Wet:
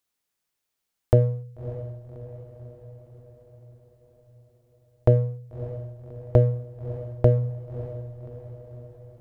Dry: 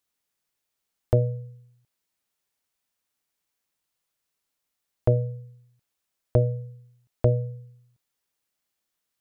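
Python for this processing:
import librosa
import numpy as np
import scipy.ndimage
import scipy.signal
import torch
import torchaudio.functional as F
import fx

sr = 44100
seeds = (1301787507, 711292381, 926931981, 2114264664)

p1 = fx.backlash(x, sr, play_db=-29.0)
p2 = x + (p1 * 10.0 ** (-7.0 / 20.0))
y = fx.echo_diffused(p2, sr, ms=593, feedback_pct=57, wet_db=-13.5)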